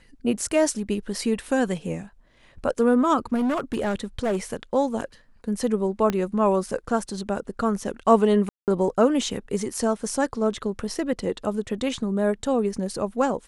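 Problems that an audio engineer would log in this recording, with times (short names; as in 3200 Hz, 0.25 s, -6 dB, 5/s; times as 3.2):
3.34–4.37 clipped -20 dBFS
6.1 pop -11 dBFS
8.49–8.68 gap 0.188 s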